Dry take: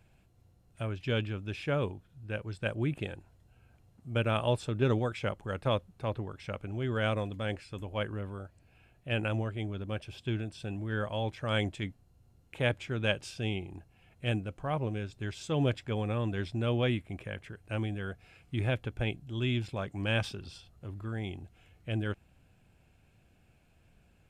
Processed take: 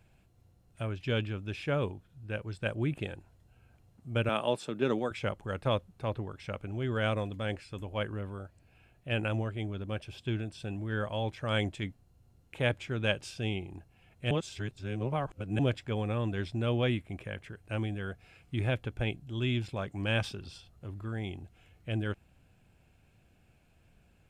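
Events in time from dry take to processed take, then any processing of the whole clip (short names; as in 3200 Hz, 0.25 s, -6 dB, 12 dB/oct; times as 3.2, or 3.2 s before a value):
4.29–5.11 HPF 170 Hz 24 dB/oct
14.31–15.59 reverse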